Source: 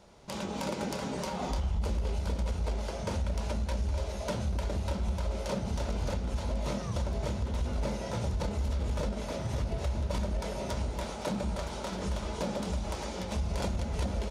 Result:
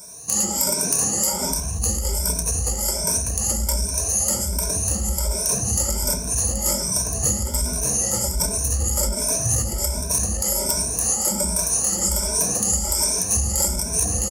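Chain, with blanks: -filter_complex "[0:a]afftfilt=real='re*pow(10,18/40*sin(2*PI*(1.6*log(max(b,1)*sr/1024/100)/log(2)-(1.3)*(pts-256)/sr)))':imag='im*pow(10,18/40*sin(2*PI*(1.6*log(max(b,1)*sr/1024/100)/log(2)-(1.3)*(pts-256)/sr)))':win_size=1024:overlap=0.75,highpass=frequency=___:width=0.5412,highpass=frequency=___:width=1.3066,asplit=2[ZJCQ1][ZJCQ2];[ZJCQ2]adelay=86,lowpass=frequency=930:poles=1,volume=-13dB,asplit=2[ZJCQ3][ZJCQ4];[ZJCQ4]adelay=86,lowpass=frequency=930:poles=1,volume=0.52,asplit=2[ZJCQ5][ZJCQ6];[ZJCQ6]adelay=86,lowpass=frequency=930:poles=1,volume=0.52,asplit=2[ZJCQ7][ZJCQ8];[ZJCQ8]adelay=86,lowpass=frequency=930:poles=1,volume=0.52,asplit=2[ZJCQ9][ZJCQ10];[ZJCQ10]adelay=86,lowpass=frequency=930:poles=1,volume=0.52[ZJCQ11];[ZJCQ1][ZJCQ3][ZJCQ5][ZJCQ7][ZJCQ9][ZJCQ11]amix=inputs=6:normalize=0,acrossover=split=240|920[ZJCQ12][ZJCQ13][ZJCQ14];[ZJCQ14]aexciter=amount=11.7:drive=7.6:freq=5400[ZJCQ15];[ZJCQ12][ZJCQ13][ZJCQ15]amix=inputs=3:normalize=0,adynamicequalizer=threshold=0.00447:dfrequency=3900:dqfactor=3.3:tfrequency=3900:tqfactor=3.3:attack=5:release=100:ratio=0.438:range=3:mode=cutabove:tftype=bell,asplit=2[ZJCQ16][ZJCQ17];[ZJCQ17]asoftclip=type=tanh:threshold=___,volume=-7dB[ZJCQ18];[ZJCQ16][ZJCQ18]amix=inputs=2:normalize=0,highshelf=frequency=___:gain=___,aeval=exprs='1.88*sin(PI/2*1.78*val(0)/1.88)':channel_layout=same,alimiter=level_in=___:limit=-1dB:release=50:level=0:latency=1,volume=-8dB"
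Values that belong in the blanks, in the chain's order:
43, 43, -15.5dB, 7600, 5.5, -1.5dB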